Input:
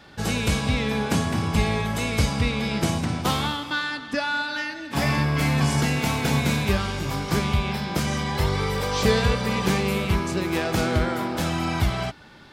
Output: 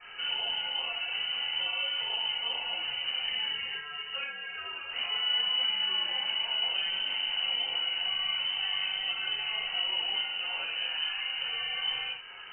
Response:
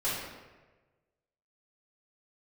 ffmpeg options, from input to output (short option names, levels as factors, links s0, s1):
-filter_complex "[0:a]alimiter=limit=0.0841:level=0:latency=1,acrossover=split=170|440[s0][s1][s2];[s0]acompressor=threshold=0.0126:ratio=4[s3];[s1]acompressor=threshold=0.00891:ratio=4[s4];[s2]acompressor=threshold=0.00708:ratio=4[s5];[s3][s4][s5]amix=inputs=3:normalize=0,lowpass=f=2600:t=q:w=0.5098,lowpass=f=2600:t=q:w=0.6013,lowpass=f=2600:t=q:w=0.9,lowpass=f=2600:t=q:w=2.563,afreqshift=-3100[s6];[1:a]atrim=start_sample=2205,atrim=end_sample=6174,asetrate=57330,aresample=44100[s7];[s6][s7]afir=irnorm=-1:irlink=0,flanger=delay=7.9:depth=3.4:regen=-50:speed=1.4:shape=triangular,volume=1.41"